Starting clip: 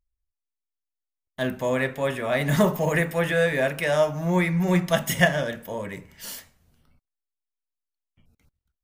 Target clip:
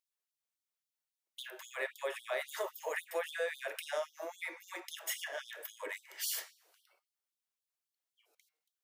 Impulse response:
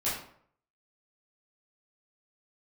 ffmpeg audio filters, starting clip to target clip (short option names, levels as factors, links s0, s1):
-af "acompressor=threshold=0.0178:ratio=6,bandreject=f=153.5:t=h:w=4,bandreject=f=307:t=h:w=4,bandreject=f=460.5:t=h:w=4,bandreject=f=614:t=h:w=4,bandreject=f=767.5:t=h:w=4,bandreject=f=921:t=h:w=4,bandreject=f=1074.5:t=h:w=4,bandreject=f=1228:t=h:w=4,bandreject=f=1381.5:t=h:w=4,bandreject=f=1535:t=h:w=4,bandreject=f=1688.5:t=h:w=4,bandreject=f=1842:t=h:w=4,bandreject=f=1995.5:t=h:w=4,bandreject=f=2149:t=h:w=4,bandreject=f=2302.5:t=h:w=4,bandreject=f=2456:t=h:w=4,bandreject=f=2609.5:t=h:w=4,bandreject=f=2763:t=h:w=4,bandreject=f=2916.5:t=h:w=4,bandreject=f=3070:t=h:w=4,bandreject=f=3223.5:t=h:w=4,bandreject=f=3377:t=h:w=4,bandreject=f=3530.5:t=h:w=4,bandreject=f=3684:t=h:w=4,bandreject=f=3837.5:t=h:w=4,bandreject=f=3991:t=h:w=4,bandreject=f=4144.5:t=h:w=4,bandreject=f=4298:t=h:w=4,bandreject=f=4451.5:t=h:w=4,bandreject=f=4605:t=h:w=4,bandreject=f=4758.5:t=h:w=4,bandreject=f=4912:t=h:w=4,bandreject=f=5065.5:t=h:w=4,bandreject=f=5219:t=h:w=4,bandreject=f=5372.5:t=h:w=4,bandreject=f=5526:t=h:w=4,bandreject=f=5679.5:t=h:w=4,bandreject=f=5833:t=h:w=4,bandreject=f=5986.5:t=h:w=4,afftfilt=real='re*gte(b*sr/1024,300*pow(3200/300,0.5+0.5*sin(2*PI*3.7*pts/sr)))':imag='im*gte(b*sr/1024,300*pow(3200/300,0.5+0.5*sin(2*PI*3.7*pts/sr)))':win_size=1024:overlap=0.75,volume=1.41"